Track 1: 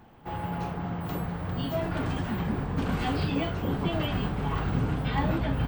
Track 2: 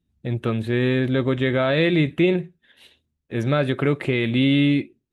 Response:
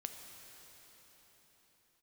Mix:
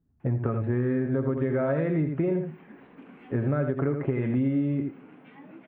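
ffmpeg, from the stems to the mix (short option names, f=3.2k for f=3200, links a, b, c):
-filter_complex "[0:a]highpass=f=250:w=0.5412,highpass=f=250:w=1.3066,highshelf=f=3.5k:t=q:w=3:g=-13,acrossover=split=340[a][b];[b]acompressor=threshold=-52dB:ratio=2[c];[a][c]amix=inputs=2:normalize=0,adelay=200,volume=-11.5dB[d];[1:a]lowpass=f=1.5k:w=0.5412,lowpass=f=1.5k:w=1.3066,aecho=1:1:7.3:0.37,volume=2dB,asplit=2[e][f];[f]volume=-7.5dB,aecho=0:1:82:1[g];[d][e][g]amix=inputs=3:normalize=0,acompressor=threshold=-23dB:ratio=6"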